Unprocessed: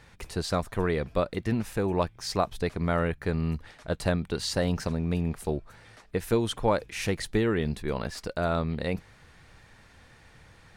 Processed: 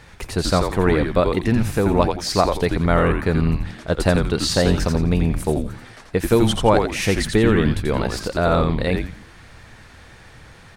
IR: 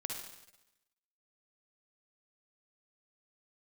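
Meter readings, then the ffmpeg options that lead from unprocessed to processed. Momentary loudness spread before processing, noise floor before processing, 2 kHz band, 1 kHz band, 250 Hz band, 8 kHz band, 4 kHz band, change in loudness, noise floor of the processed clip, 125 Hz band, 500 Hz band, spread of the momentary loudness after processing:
7 LU, −56 dBFS, +9.5 dB, +9.5 dB, +10.0 dB, +10.0 dB, +10.0 dB, +9.5 dB, −45 dBFS, +9.5 dB, +9.5 dB, 8 LU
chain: -filter_complex "[0:a]asplit=5[link_01][link_02][link_03][link_04][link_05];[link_02]adelay=86,afreqshift=-130,volume=-4.5dB[link_06];[link_03]adelay=172,afreqshift=-260,volume=-14.4dB[link_07];[link_04]adelay=258,afreqshift=-390,volume=-24.3dB[link_08];[link_05]adelay=344,afreqshift=-520,volume=-34.2dB[link_09];[link_01][link_06][link_07][link_08][link_09]amix=inputs=5:normalize=0,volume=8.5dB"

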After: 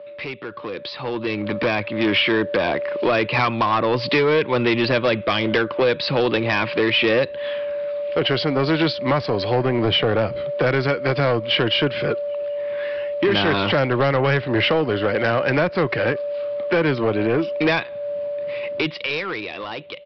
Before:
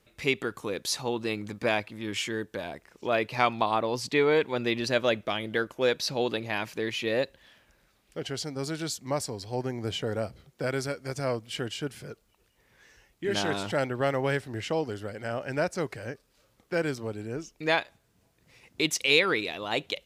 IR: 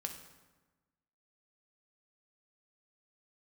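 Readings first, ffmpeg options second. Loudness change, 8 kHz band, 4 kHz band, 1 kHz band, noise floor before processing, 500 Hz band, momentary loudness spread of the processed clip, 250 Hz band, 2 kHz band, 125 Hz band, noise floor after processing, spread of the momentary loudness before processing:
+9.0 dB, below −15 dB, +9.0 dB, +8.5 dB, −68 dBFS, +9.5 dB, 9 LU, +10.5 dB, +8.5 dB, +11.5 dB, −34 dBFS, 11 LU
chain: -filter_complex "[0:a]aeval=exprs='val(0)+0.00631*sin(2*PI*580*n/s)':channel_layout=same,acrossover=split=170[link_01][link_02];[link_02]acompressor=threshold=-35dB:ratio=6[link_03];[link_01][link_03]amix=inputs=2:normalize=0,crystalizer=i=5.5:c=0,highpass=120,equalizer=frequency=340:width_type=q:width=4:gain=5,equalizer=frequency=510:width_type=q:width=4:gain=4,equalizer=frequency=1100:width_type=q:width=4:gain=7,lowpass=frequency=3000:width=0.5412,lowpass=frequency=3000:width=1.3066,aresample=11025,asoftclip=type=tanh:threshold=-30.5dB,aresample=44100,dynaudnorm=framelen=130:gausssize=21:maxgain=12.5dB,volume=5.5dB"

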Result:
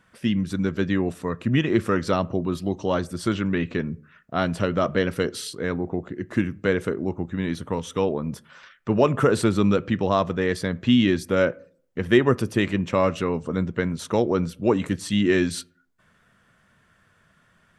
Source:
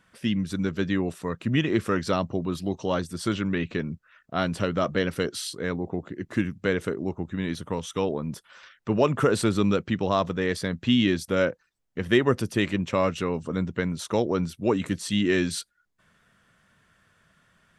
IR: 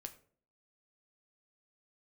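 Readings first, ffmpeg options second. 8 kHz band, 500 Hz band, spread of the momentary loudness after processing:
−0.5 dB, +3.0 dB, 9 LU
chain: -filter_complex "[0:a]asplit=2[link_01][link_02];[1:a]atrim=start_sample=2205,lowpass=2800[link_03];[link_02][link_03]afir=irnorm=-1:irlink=0,volume=-3dB[link_04];[link_01][link_04]amix=inputs=2:normalize=0"

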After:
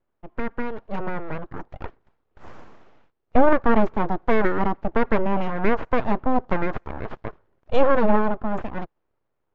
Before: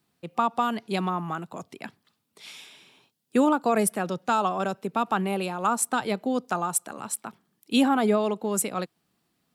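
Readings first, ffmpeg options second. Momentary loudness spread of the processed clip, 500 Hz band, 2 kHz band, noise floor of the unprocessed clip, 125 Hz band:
19 LU, +4.5 dB, +4.0 dB, −75 dBFS, +4.0 dB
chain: -af "dynaudnorm=framelen=210:gausssize=13:maxgain=11.5dB,aresample=16000,aeval=exprs='abs(val(0))':channel_layout=same,aresample=44100,lowpass=1300"

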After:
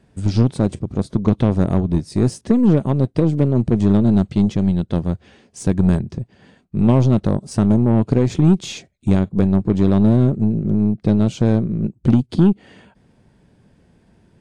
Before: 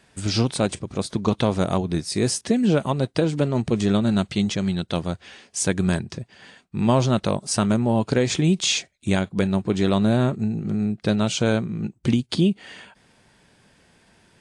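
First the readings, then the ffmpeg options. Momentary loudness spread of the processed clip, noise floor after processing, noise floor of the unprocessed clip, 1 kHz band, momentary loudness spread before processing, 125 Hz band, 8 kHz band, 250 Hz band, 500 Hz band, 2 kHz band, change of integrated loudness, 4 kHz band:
8 LU, −58 dBFS, −59 dBFS, −1.5 dB, 8 LU, +7.0 dB, −10.0 dB, +6.0 dB, +1.5 dB, −7.0 dB, +5.0 dB, −9.5 dB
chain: -af "tiltshelf=frequency=670:gain=9,aeval=exprs='0.891*(cos(1*acos(clip(val(0)/0.891,-1,1)))-cos(1*PI/2))+0.0447*(cos(8*acos(clip(val(0)/0.891,-1,1)))-cos(8*PI/2))':channel_layout=same,volume=-1dB"

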